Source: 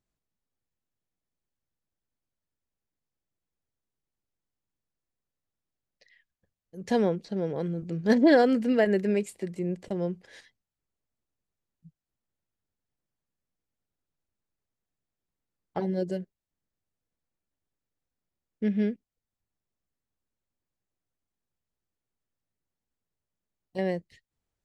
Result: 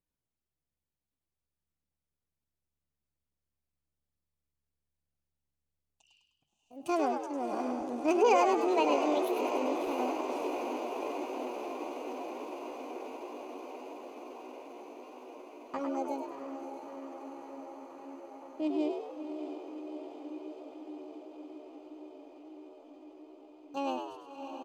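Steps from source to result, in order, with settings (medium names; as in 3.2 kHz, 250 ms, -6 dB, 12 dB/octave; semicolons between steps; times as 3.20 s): echo that smears into a reverb 650 ms, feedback 80%, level -7.5 dB; pitch shift +6.5 st; frequency-shifting echo 102 ms, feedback 47%, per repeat +71 Hz, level -6 dB; trim -6 dB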